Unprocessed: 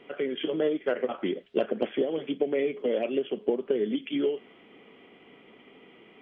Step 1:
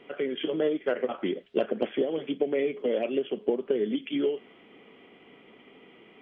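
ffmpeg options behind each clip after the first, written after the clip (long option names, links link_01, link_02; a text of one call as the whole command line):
ffmpeg -i in.wav -af anull out.wav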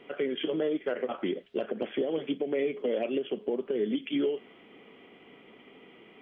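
ffmpeg -i in.wav -af "alimiter=limit=-20dB:level=0:latency=1:release=84" out.wav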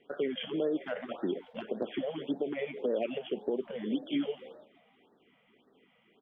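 ffmpeg -i in.wav -filter_complex "[0:a]asplit=6[link_01][link_02][link_03][link_04][link_05][link_06];[link_02]adelay=161,afreqshift=90,volume=-20.5dB[link_07];[link_03]adelay=322,afreqshift=180,volume=-24.8dB[link_08];[link_04]adelay=483,afreqshift=270,volume=-29.1dB[link_09];[link_05]adelay=644,afreqshift=360,volume=-33.4dB[link_10];[link_06]adelay=805,afreqshift=450,volume=-37.7dB[link_11];[link_01][link_07][link_08][link_09][link_10][link_11]amix=inputs=6:normalize=0,agate=range=-10dB:threshold=-48dB:ratio=16:detection=peak,afftfilt=real='re*(1-between(b*sr/1024,300*pow(2700/300,0.5+0.5*sin(2*PI*1.8*pts/sr))/1.41,300*pow(2700/300,0.5+0.5*sin(2*PI*1.8*pts/sr))*1.41))':imag='im*(1-between(b*sr/1024,300*pow(2700/300,0.5+0.5*sin(2*PI*1.8*pts/sr))/1.41,300*pow(2700/300,0.5+0.5*sin(2*PI*1.8*pts/sr))*1.41))':win_size=1024:overlap=0.75,volume=-1.5dB" out.wav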